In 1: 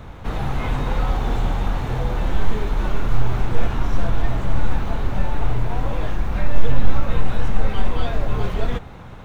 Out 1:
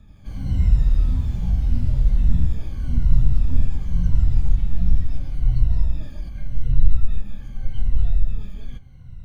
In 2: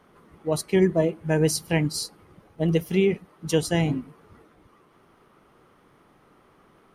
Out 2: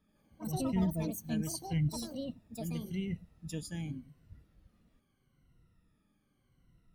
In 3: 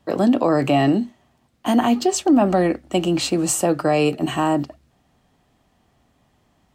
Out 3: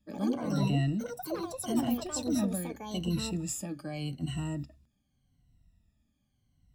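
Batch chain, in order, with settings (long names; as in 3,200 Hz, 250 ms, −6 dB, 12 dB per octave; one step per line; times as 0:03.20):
rippled gain that drifts along the octave scale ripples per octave 2, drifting −0.83 Hz, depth 17 dB
guitar amp tone stack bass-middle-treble 10-0-1
delay with pitch and tempo change per echo 83 ms, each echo +6 semitones, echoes 2
parametric band 400 Hz −9 dB 0.62 octaves
level +4 dB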